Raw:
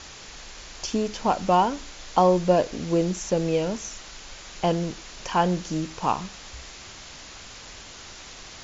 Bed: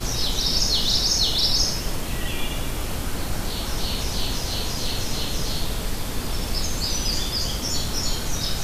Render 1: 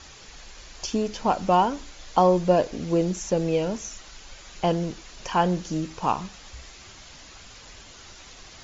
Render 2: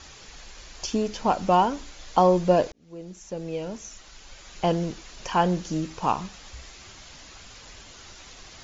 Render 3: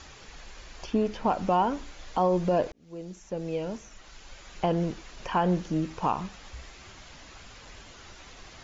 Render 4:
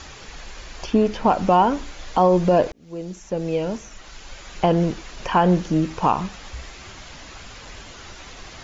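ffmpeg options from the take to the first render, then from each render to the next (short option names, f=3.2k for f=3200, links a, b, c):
-af "afftdn=nr=6:nf=-43"
-filter_complex "[0:a]asplit=2[a][b];[a]atrim=end=2.72,asetpts=PTS-STARTPTS,afade=t=out:st=2.716:d=0.004:c=hsin[c];[b]atrim=start=2.72,asetpts=PTS-STARTPTS,afade=t=in:d=2[d];[c][d]concat=n=2:v=0:a=1"
-filter_complex "[0:a]acrossover=split=3000[a][b];[a]alimiter=limit=-15.5dB:level=0:latency=1:release=91[c];[b]acompressor=threshold=-54dB:ratio=6[d];[c][d]amix=inputs=2:normalize=0"
-af "volume=8dB"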